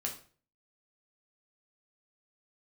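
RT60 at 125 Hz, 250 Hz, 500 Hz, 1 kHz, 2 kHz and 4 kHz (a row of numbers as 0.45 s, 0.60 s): 0.60 s, 0.45 s, 0.45 s, 0.40 s, 0.40 s, 0.35 s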